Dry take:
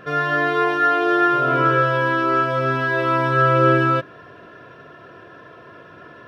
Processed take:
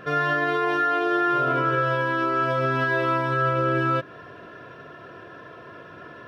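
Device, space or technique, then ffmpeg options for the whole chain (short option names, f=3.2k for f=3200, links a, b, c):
stacked limiters: -af "alimiter=limit=-10.5dB:level=0:latency=1:release=29,alimiter=limit=-14.5dB:level=0:latency=1:release=142"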